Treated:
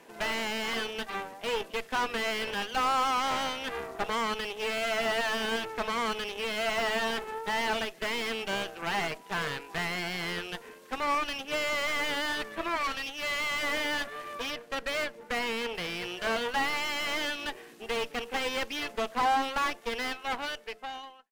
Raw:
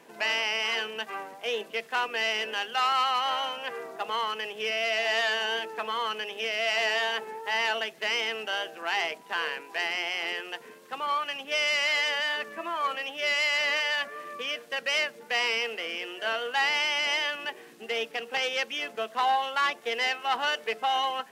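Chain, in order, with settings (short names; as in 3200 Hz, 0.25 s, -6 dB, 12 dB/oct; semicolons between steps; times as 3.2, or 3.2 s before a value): ending faded out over 1.99 s; 14.5–15.75 high shelf 2900 Hz -8.5 dB; added harmonics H 8 -14 dB, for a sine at -14.5 dBFS; 12.77–13.63 bell 430 Hz -7 dB 2.4 oct; slew limiter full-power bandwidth 81 Hz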